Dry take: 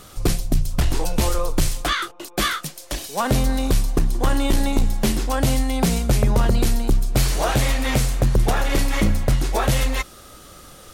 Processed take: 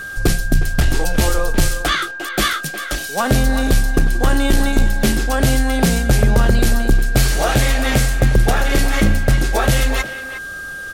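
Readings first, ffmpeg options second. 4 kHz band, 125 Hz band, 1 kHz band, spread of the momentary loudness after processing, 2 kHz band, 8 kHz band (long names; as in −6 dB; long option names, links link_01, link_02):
+4.0 dB, +4.0 dB, +3.5 dB, 7 LU, +9.0 dB, +4.0 dB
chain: -filter_complex "[0:a]bandreject=frequency=1000:width=7.3,asplit=2[link_01][link_02];[link_02]adelay=360,highpass=300,lowpass=3400,asoftclip=type=hard:threshold=-18.5dB,volume=-10dB[link_03];[link_01][link_03]amix=inputs=2:normalize=0,aeval=exprs='val(0)+0.0282*sin(2*PI*1600*n/s)':channel_layout=same,volume=4dB"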